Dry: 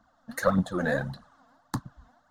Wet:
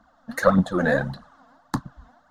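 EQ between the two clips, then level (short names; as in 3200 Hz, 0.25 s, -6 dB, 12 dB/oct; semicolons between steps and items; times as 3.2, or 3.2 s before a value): bell 110 Hz -8.5 dB 0.36 oct; high shelf 5800 Hz -7.5 dB; +6.5 dB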